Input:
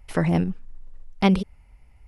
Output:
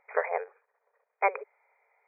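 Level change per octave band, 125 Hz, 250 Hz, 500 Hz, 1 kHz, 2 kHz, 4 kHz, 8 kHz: under -40 dB, under -35 dB, -2.5 dB, 0.0 dB, -0.5 dB, under -40 dB, n/a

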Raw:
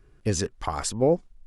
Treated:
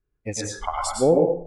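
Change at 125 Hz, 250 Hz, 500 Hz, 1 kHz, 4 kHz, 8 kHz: -2.0, +3.0, +5.0, +4.5, +0.5, +1.0 dB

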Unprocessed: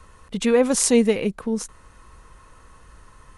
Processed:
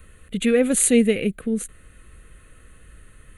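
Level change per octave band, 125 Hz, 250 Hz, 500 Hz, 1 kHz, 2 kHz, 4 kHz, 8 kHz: +1.5, +1.5, -1.0, -9.0, +2.0, -2.0, +1.5 dB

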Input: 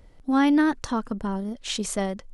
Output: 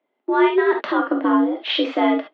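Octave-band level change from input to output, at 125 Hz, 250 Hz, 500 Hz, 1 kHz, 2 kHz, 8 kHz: under -20 dB, +3.5 dB, +12.5 dB, +8.0 dB, +7.0 dB, under -25 dB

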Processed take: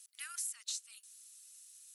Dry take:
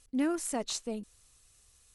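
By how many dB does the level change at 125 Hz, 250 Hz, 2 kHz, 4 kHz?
under -40 dB, under -40 dB, -6.0 dB, -4.0 dB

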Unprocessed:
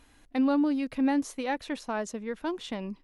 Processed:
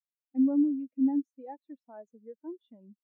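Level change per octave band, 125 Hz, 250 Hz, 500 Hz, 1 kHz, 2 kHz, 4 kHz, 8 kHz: n/a, -0.5 dB, -10.5 dB, -14.0 dB, under -25 dB, under -35 dB, under -35 dB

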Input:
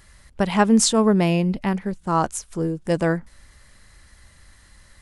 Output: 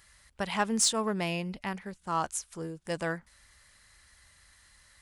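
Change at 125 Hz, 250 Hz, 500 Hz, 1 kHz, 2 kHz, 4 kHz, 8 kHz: -15.0, -15.0, -12.5, -8.5, -6.0, -5.0, -5.0 dB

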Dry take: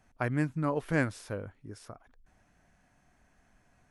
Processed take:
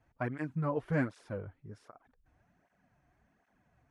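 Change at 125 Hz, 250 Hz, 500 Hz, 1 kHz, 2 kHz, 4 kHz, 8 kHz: -3.0 dB, -3.5 dB, -2.5 dB, -3.5 dB, -6.0 dB, -11.0 dB, under -15 dB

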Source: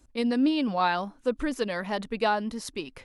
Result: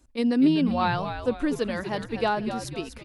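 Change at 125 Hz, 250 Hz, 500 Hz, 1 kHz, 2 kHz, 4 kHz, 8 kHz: +9.0, +3.5, +1.0, 0.0, -0.5, -0.5, -0.5 dB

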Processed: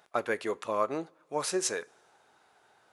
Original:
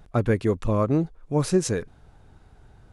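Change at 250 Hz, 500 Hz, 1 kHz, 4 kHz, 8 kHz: -14.5, -7.0, -0.5, 0.0, 0.0 dB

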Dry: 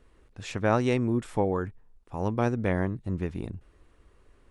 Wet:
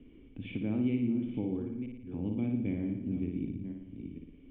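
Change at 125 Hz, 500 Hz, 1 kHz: -7.0, -13.0, -23.5 dB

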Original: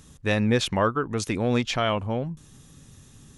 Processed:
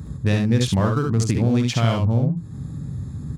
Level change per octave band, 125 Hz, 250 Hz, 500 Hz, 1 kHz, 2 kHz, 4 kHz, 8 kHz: +11.0, +5.5, -0.5, -1.5, -2.5, 0.0, +3.5 dB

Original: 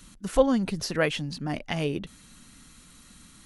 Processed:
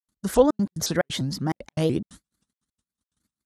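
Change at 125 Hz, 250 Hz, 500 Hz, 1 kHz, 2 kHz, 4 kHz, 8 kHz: +4.0, +2.5, +3.0, +2.5, -3.0, +1.5, +6.5 dB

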